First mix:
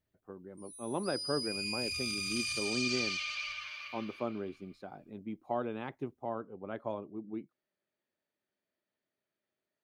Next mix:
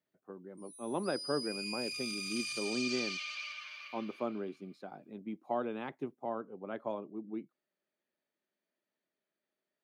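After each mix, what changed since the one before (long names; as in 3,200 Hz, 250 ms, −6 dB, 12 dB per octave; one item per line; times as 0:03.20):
background −3.5 dB
master: add high-pass filter 150 Hz 24 dB per octave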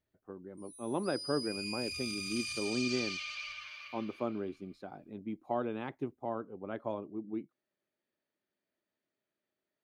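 speech: add parametric band 300 Hz +3 dB 0.62 octaves
master: remove high-pass filter 150 Hz 24 dB per octave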